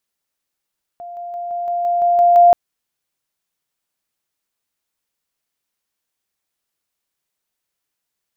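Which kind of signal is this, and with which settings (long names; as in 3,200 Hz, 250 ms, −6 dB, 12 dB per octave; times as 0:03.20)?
level staircase 698 Hz −29.5 dBFS, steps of 3 dB, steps 9, 0.17 s 0.00 s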